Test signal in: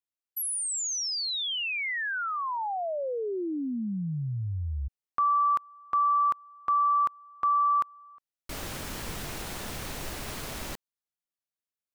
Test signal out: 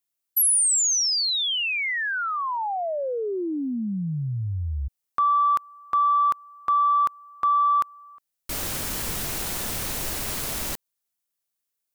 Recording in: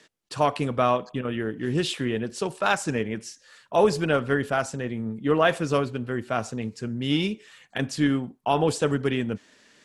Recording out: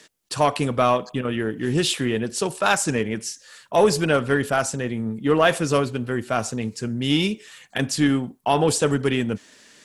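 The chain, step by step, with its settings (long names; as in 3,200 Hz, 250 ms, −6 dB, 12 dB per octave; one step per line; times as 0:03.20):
high-shelf EQ 6,100 Hz +10.5 dB
in parallel at −5 dB: soft clipping −18 dBFS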